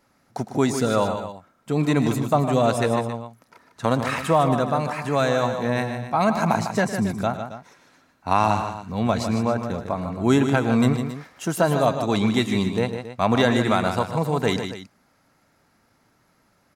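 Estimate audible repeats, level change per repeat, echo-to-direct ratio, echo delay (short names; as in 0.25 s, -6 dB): 3, no steady repeat, -6.5 dB, 0.109 s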